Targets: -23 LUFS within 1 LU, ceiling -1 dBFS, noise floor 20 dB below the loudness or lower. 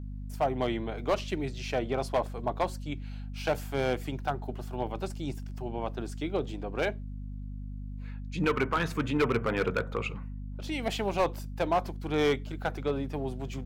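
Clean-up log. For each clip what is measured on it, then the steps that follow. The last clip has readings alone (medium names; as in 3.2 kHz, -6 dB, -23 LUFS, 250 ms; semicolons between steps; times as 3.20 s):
clipped samples 0.8%; clipping level -20.0 dBFS; hum 50 Hz; highest harmonic 250 Hz; hum level -36 dBFS; loudness -32.0 LUFS; peak level -20.0 dBFS; loudness target -23.0 LUFS
-> clip repair -20 dBFS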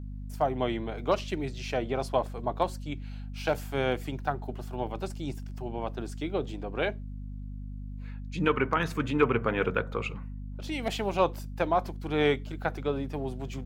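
clipped samples 0.0%; hum 50 Hz; highest harmonic 250 Hz; hum level -36 dBFS
-> hum notches 50/100/150/200/250 Hz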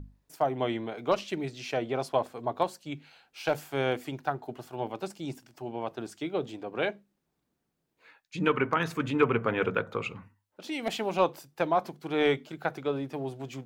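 hum not found; loudness -31.0 LUFS; peak level -10.5 dBFS; loudness target -23.0 LUFS
-> trim +8 dB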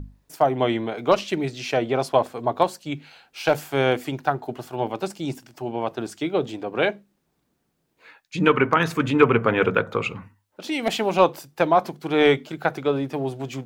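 loudness -23.0 LUFS; peak level -2.5 dBFS; noise floor -72 dBFS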